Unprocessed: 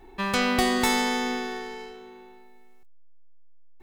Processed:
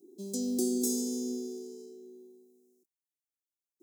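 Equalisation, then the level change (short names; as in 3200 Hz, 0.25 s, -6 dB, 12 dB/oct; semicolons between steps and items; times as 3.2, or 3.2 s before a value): HPF 250 Hz 24 dB/oct; Chebyshev band-stop 350–6300 Hz, order 3; bell 2500 Hz -7 dB 0.4 oct; 0.0 dB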